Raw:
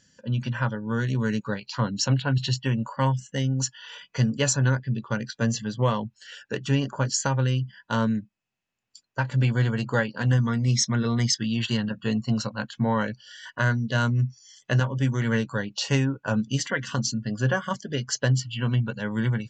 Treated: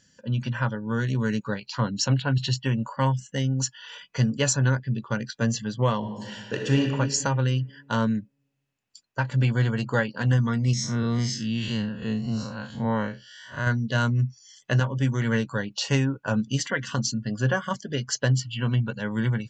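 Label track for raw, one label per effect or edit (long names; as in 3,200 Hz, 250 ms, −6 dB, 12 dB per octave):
5.970000	6.800000	thrown reverb, RT60 1.8 s, DRR 0.5 dB
10.730000	13.670000	spectrum smeared in time width 116 ms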